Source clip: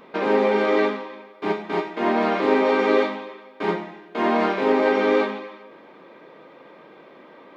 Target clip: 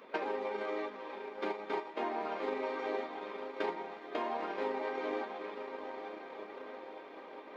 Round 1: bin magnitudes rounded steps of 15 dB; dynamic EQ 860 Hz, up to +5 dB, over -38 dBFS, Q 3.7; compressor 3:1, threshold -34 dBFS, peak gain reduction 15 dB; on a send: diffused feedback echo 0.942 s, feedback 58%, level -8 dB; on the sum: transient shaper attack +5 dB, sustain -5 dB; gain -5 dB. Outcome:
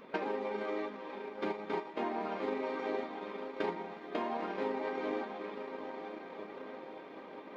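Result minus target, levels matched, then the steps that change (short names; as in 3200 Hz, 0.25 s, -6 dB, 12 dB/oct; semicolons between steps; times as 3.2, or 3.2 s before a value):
250 Hz band +3.5 dB
add after dynamic EQ: HPF 330 Hz 12 dB/oct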